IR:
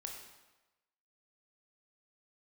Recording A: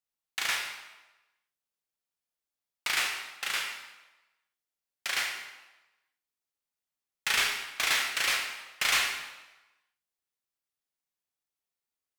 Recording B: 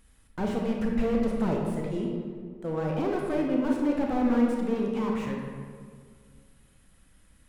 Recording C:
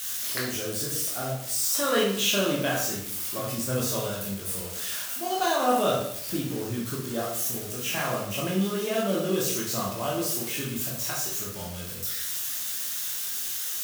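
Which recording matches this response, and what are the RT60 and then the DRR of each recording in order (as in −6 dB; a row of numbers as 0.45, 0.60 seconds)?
A; 1.1, 1.9, 0.70 seconds; 1.0, −0.5, −4.5 decibels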